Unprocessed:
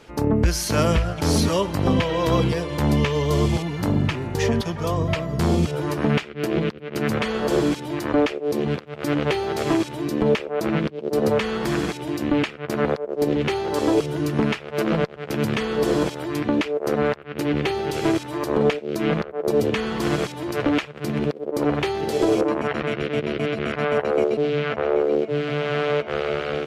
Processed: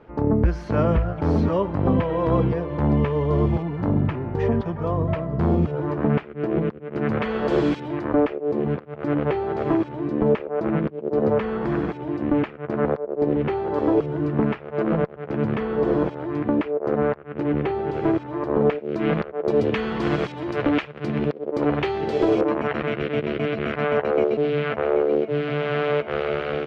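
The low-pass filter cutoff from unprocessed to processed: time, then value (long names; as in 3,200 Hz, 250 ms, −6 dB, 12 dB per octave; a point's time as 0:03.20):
0:06.89 1,300 Hz
0:07.68 3,500 Hz
0:08.08 1,400 Hz
0:18.58 1,400 Hz
0:19.21 3,000 Hz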